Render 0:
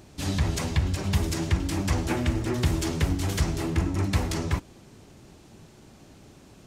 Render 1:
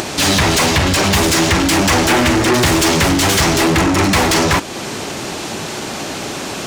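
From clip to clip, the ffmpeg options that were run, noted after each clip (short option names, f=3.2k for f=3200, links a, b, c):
-filter_complex "[0:a]asplit=2[a][b];[b]highpass=f=720:p=1,volume=30dB,asoftclip=type=tanh:threshold=-10.5dB[c];[a][c]amix=inputs=2:normalize=0,lowpass=f=8k:p=1,volume=-6dB,acompressor=mode=upward:threshold=-23dB:ratio=2.5,volume=5.5dB"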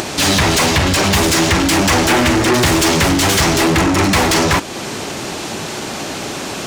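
-af anull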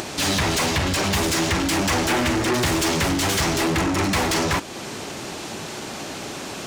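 -af "acrusher=bits=9:mix=0:aa=0.000001,volume=-8dB"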